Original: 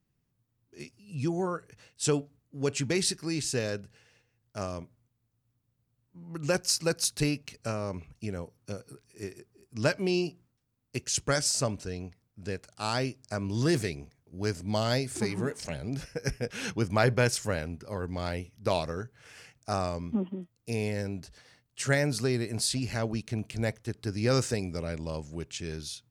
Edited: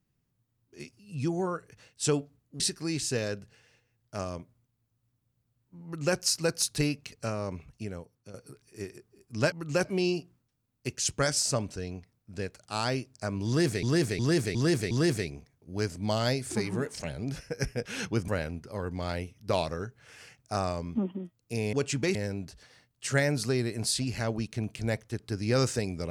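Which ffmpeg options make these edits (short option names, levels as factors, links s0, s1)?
-filter_complex "[0:a]asplit=12[s0][s1][s2][s3][s4][s5][s6][s7][s8][s9][s10][s11];[s0]atrim=end=2.602[s12];[s1]atrim=start=3.018:end=8.76,asetpts=PTS-STARTPTS,afade=t=out:st=5.082:d=0.66:silence=0.251189[s13];[s2]atrim=start=8.76:end=9.942,asetpts=PTS-STARTPTS,afade=t=in:d=0.004:c=hsin:silence=0.251189[s14];[s3]atrim=start=6.258:end=6.592[s15];[s4]atrim=start=9.938:end=13.922[s16];[s5]atrim=start=13.558:end=13.922[s17];[s6]atrim=start=13.558:end=13.922[s18];[s7]atrim=start=13.558:end=13.922[s19];[s8]atrim=start=13.558:end=16.932[s20];[s9]atrim=start=17.448:end=20.902[s21];[s10]atrim=start=2.598:end=3.022[s22];[s11]atrim=start=20.898[s23];[s13][s14]concat=n=2:v=0:a=1[s24];[s12][s24]acrossfade=d=0.004:c1=hsin:c2=hsin[s25];[s25][s15]acrossfade=d=0.004:c1=hsin:c2=hsin[s26];[s26][s16]acrossfade=d=0.004:c1=hsin:c2=hsin[s27];[s27][s17]acrossfade=d=0.004:c1=hsin:c2=hsin[s28];[s28][s18]acrossfade=d=0.004:c1=hsin:c2=hsin[s29];[s29][s19]acrossfade=d=0.004:c1=hsin:c2=hsin[s30];[s30][s20]acrossfade=d=0.004:c1=hsin:c2=hsin[s31];[s31][s21]acrossfade=d=0.004:c1=hsin:c2=hsin[s32];[s32][s22]acrossfade=d=0.004:c1=hsin:c2=hsin[s33];[s33][s23]acrossfade=d=0.004:c1=hsin:c2=hsin"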